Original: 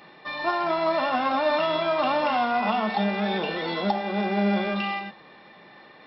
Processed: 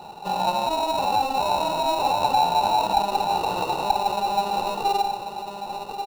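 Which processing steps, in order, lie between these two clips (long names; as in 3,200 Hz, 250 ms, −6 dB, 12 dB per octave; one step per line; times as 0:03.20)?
in parallel at −1 dB: compressor whose output falls as the input rises −31 dBFS, ratio −1
on the sum: parametric band 160 Hz −14 dB 1.2 octaves
asymmetric clip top −29 dBFS
on a send: single-tap delay 1,096 ms −8.5 dB
on the sum: gate on every frequency bin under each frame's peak −25 dB strong
sample-rate reduction 1,600 Hz, jitter 0%
parametric band 2,100 Hz −14.5 dB 0.42 octaves
hollow resonant body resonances 870/1,500/2,700/3,900 Hz, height 18 dB, ringing for 20 ms
level −6.5 dB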